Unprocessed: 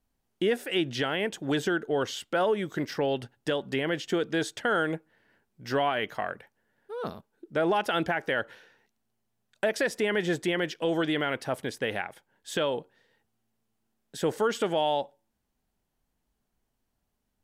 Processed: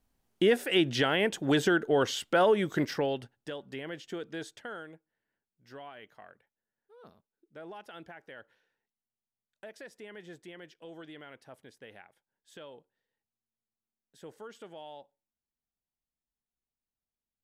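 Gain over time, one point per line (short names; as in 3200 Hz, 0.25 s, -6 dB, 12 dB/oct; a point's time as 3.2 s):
2.83 s +2 dB
3.48 s -11 dB
4.52 s -11 dB
4.93 s -20 dB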